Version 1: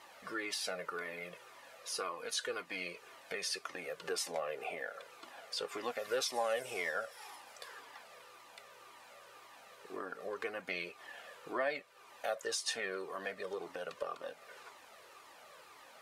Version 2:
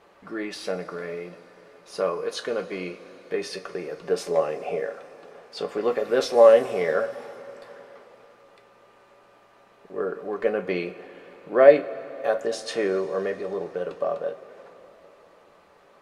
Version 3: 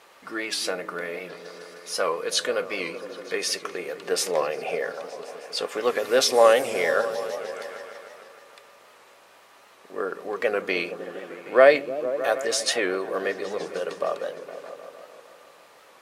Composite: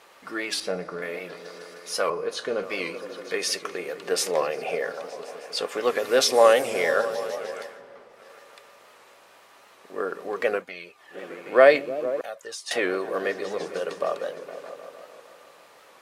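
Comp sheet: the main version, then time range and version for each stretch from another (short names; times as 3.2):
3
0.6–1.02 from 2
2.1–2.63 from 2
7.71–8.19 from 2, crossfade 0.24 s
10.6–11.15 from 1, crossfade 0.10 s
12.21–12.71 from 1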